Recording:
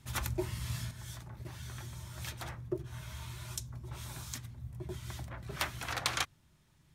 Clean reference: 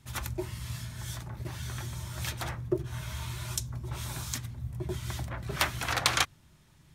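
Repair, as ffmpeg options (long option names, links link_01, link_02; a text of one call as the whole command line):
ffmpeg -i in.wav -af "asetnsamples=nb_out_samples=441:pad=0,asendcmd='0.91 volume volume 7dB',volume=0dB" out.wav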